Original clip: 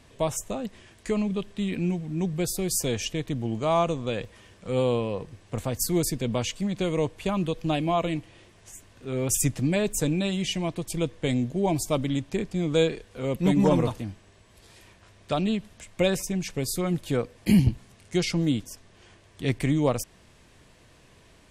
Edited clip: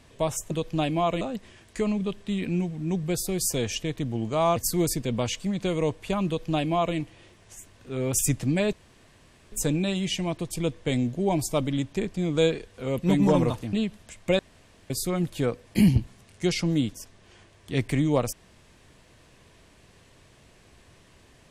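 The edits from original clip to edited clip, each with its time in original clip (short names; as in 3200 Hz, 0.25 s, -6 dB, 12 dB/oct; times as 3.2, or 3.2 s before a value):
3.86–5.72 cut
7.42–8.12 copy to 0.51
9.89 insert room tone 0.79 s
14.1–15.44 cut
16.1–16.61 room tone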